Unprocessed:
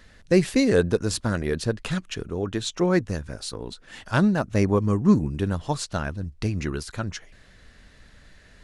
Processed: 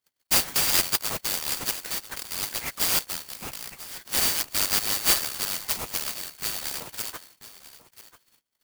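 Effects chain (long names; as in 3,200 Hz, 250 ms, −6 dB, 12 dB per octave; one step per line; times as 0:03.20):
band-splitting scrambler in four parts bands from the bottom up 4321
flat-topped bell 3,300 Hz −8 dB 1 octave
noise gate −52 dBFS, range −30 dB
on a send: single-tap delay 990 ms −16 dB
on the sum: converter with an unsteady clock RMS 0.053 ms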